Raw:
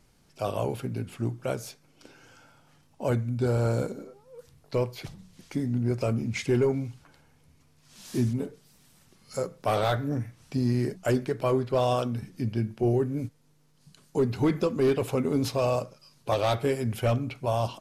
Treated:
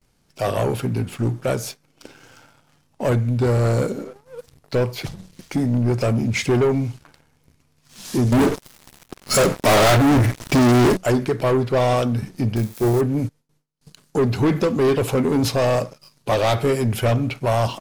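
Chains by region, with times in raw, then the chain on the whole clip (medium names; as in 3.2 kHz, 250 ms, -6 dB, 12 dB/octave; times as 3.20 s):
8.32–10.97 s: comb 3.1 ms, depth 33% + waveshaping leveller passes 5 + tape noise reduction on one side only decoder only
12.56–13.01 s: zero-crossing glitches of -30 dBFS + band-stop 2.9 kHz, Q 10 + upward expansion, over -37 dBFS
whole clip: gate with hold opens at -54 dBFS; waveshaping leveller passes 2; trim +3 dB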